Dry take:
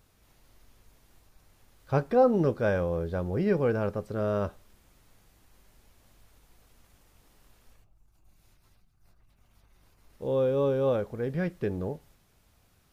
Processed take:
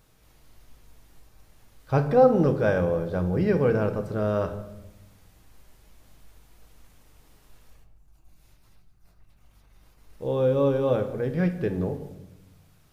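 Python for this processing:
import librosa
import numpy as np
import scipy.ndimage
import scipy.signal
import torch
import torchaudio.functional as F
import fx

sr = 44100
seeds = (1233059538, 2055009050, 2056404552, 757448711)

y = fx.room_shoebox(x, sr, seeds[0], volume_m3=360.0, walls='mixed', distance_m=0.56)
y = y * 10.0 ** (2.5 / 20.0)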